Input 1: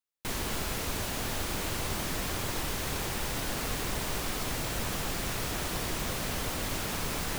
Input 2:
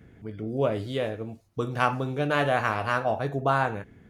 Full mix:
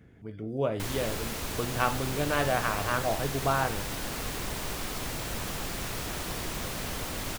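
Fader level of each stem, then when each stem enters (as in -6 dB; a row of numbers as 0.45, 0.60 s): -1.5, -3.5 dB; 0.55, 0.00 s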